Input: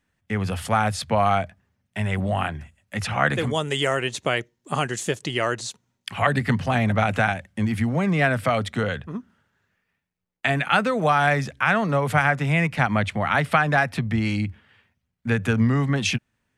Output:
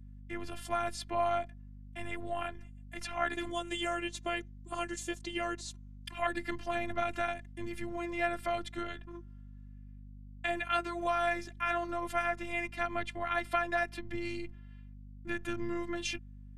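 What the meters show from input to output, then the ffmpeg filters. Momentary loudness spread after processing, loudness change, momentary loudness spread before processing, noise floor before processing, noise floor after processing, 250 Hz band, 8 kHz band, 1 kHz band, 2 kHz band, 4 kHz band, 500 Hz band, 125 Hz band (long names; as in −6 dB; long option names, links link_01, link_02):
17 LU, −12.5 dB, 10 LU, −77 dBFS, −49 dBFS, −15.0 dB, −11.5 dB, −11.0 dB, −13.0 dB, −12.0 dB, −10.5 dB, −23.5 dB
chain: -af "afftfilt=real='hypot(re,im)*cos(PI*b)':imag='0':win_size=512:overlap=0.75,aeval=exprs='val(0)+0.01*(sin(2*PI*50*n/s)+sin(2*PI*2*50*n/s)/2+sin(2*PI*3*50*n/s)/3+sin(2*PI*4*50*n/s)/4+sin(2*PI*5*50*n/s)/5)':channel_layout=same,volume=-8dB"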